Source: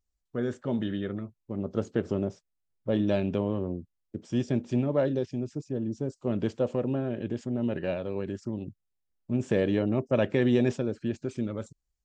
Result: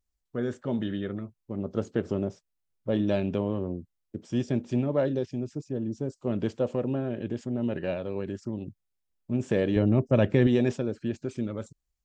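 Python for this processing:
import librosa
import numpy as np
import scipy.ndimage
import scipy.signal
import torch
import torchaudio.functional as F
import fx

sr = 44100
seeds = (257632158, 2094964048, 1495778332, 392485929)

y = fx.low_shelf(x, sr, hz=180.0, db=11.0, at=(9.76, 10.47))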